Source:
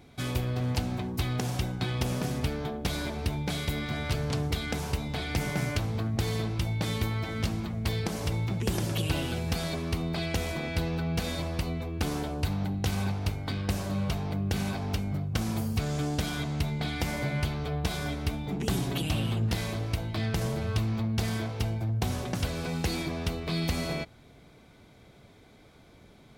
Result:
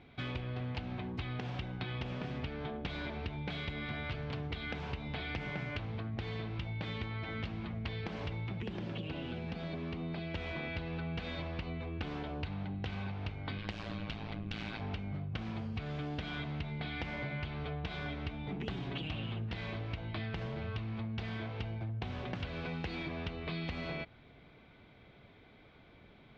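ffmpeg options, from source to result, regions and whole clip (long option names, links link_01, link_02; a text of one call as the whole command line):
ffmpeg -i in.wav -filter_complex "[0:a]asettb=1/sr,asplit=3[link_01][link_02][link_03];[link_01]atrim=end=8.624[link_04];[link_02]atrim=start=8.62:end=10.35,asetpts=PTS-STARTPTS,afade=type=in:duration=0.004:curve=qsin,afade=type=out:start_time=1.726:duration=0.004:curve=qsin,acrossover=split=190|750|6800[link_05][link_06][link_07][link_08];[link_05]acompressor=threshold=-41dB:ratio=3[link_09];[link_06]acompressor=threshold=-36dB:ratio=3[link_10];[link_07]acompressor=threshold=-46dB:ratio=3[link_11];[link_08]acompressor=threshold=-55dB:ratio=3[link_12];[link_09][link_10][link_11][link_12]amix=inputs=4:normalize=0,equalizer=frequency=200:width=2.1:gain=6[link_13];[link_03]atrim=start=10.346[link_14];[link_04][link_13]acrossfade=duration=0.004:curve1=hsin:curve2=qsin[link_15];[link_15][link_14]acrossfade=duration=0.004:curve1=qsin:curve2=hsin,asettb=1/sr,asplit=3[link_16][link_17][link_18];[link_16]atrim=end=13.584[link_19];[link_17]atrim=start=13.58:end=14.81,asetpts=PTS-STARTPTS,afade=type=in:duration=0.004:curve=qsin,afade=type=out:start_time=1.226:duration=0.004:curve=qsin,highshelf=frequency=2200:gain=10.5,tremolo=f=110:d=0.889[link_20];[link_18]atrim=start=14.806[link_21];[link_19][link_20]acrossfade=duration=0.004:curve1=hsin:curve2=qsin[link_22];[link_22][link_21]acrossfade=duration=0.004:curve1=qsin:curve2=hsin,lowpass=frequency=3100:width=0.5412,lowpass=frequency=3100:width=1.3066,highshelf=frequency=2200:gain=9.5,acompressor=threshold=-31dB:ratio=6,volume=-4.5dB" out.wav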